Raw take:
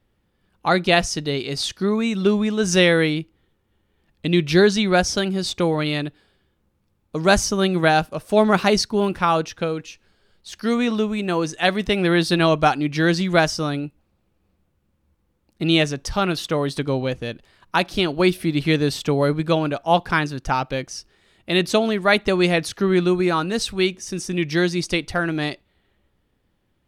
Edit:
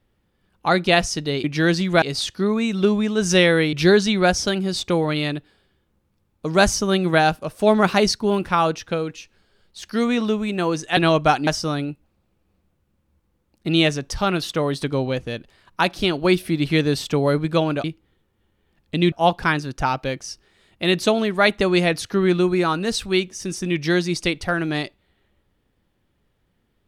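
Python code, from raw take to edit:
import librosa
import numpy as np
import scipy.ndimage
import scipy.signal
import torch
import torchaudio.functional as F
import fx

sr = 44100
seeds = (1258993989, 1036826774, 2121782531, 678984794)

y = fx.edit(x, sr, fx.move(start_s=3.15, length_s=1.28, to_s=19.79),
    fx.cut(start_s=11.67, length_s=0.67),
    fx.move(start_s=12.84, length_s=0.58, to_s=1.44), tone=tone)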